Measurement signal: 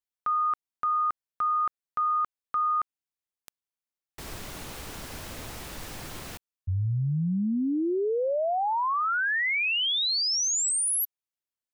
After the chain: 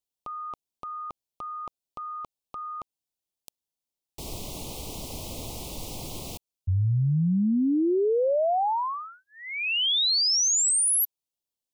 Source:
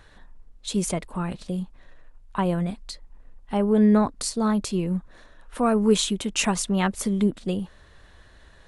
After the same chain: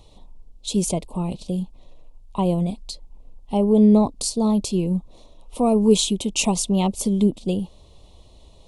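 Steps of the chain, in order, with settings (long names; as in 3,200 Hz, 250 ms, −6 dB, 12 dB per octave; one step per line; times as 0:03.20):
Butterworth band-reject 1,600 Hz, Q 0.86
level +3.5 dB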